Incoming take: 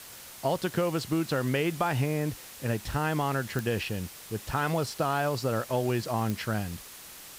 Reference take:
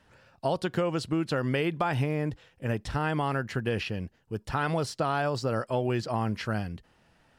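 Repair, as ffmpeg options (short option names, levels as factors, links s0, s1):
-af "adeclick=t=4,afftdn=nr=17:nf=-46"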